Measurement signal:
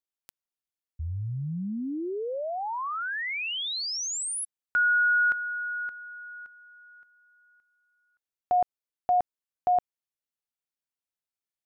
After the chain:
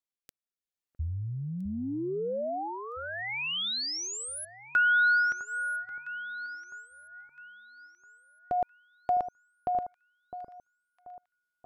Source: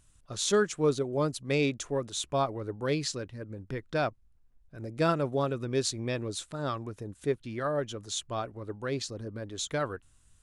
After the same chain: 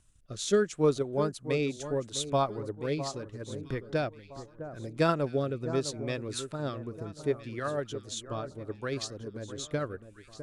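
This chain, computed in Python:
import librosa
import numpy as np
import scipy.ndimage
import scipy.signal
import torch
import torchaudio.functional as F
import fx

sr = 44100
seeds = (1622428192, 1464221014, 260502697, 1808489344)

y = fx.rotary(x, sr, hz=0.75)
y = fx.transient(y, sr, attack_db=3, sustain_db=-2)
y = fx.echo_alternate(y, sr, ms=657, hz=1400.0, feedback_pct=56, wet_db=-11)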